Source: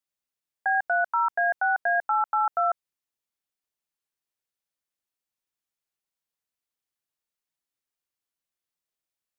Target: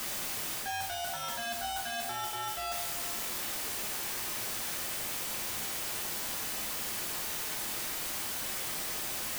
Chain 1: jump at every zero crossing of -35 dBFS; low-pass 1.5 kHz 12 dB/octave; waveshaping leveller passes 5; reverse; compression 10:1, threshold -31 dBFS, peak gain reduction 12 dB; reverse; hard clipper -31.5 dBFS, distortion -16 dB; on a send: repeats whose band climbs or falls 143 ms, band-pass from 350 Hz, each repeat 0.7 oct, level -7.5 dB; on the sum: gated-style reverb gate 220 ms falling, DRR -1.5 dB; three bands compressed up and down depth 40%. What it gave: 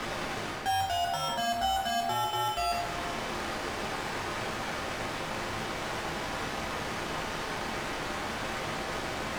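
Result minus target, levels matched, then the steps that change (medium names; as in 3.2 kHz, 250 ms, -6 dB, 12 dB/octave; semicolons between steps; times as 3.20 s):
compression: peak gain reduction -9.5 dB; 2 kHz band +3.5 dB
change: compression 10:1, threshold -40.5 dBFS, peak gain reduction 21.5 dB; remove: low-pass 1.5 kHz 12 dB/octave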